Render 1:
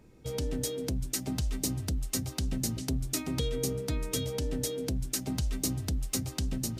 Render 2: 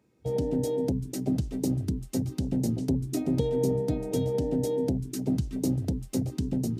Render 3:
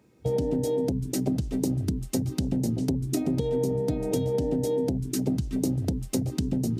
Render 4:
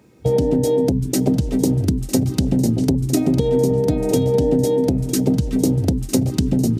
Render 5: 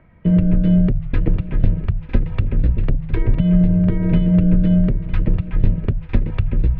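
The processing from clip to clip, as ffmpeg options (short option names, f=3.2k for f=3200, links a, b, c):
-af "afwtdn=0.0158,highpass=120,volume=8dB"
-af "acompressor=threshold=-30dB:ratio=6,volume=7dB"
-af "aecho=1:1:954:0.168,volume=9dB"
-af "highpass=f=190:t=q:w=0.5412,highpass=f=190:t=q:w=1.307,lowpass=f=2.8k:t=q:w=0.5176,lowpass=f=2.8k:t=q:w=0.7071,lowpass=f=2.8k:t=q:w=1.932,afreqshift=-290,volume=4.5dB"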